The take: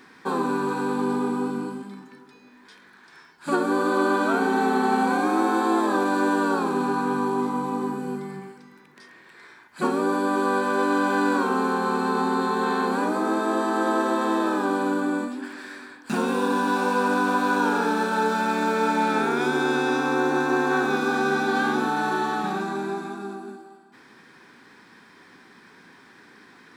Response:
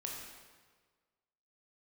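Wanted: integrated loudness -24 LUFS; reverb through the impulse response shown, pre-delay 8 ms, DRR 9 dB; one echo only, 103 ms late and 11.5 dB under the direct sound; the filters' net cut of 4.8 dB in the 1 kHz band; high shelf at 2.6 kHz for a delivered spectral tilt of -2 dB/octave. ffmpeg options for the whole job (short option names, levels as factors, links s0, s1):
-filter_complex "[0:a]equalizer=f=1000:t=o:g=-4.5,highshelf=f=2600:g=-9,aecho=1:1:103:0.266,asplit=2[s0][s1];[1:a]atrim=start_sample=2205,adelay=8[s2];[s1][s2]afir=irnorm=-1:irlink=0,volume=0.376[s3];[s0][s3]amix=inputs=2:normalize=0,volume=1.06"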